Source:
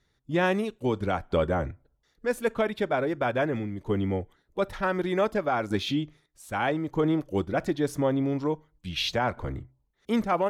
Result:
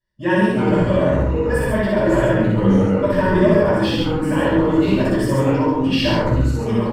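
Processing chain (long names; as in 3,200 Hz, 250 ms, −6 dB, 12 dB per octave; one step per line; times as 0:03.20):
fade-out on the ending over 0.79 s
noise gate −55 dBFS, range −18 dB
brickwall limiter −21 dBFS, peak gain reduction 6 dB
phase-vocoder stretch with locked phases 0.66×
EQ curve with evenly spaced ripples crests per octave 1.3, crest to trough 12 dB
delay with pitch and tempo change per echo 259 ms, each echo −3 semitones, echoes 3, each echo −6 dB
loudspeakers that aren't time-aligned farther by 21 metres −1 dB, 47 metres −3 dB
rectangular room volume 350 cubic metres, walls furnished, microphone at 5.8 metres
level −2 dB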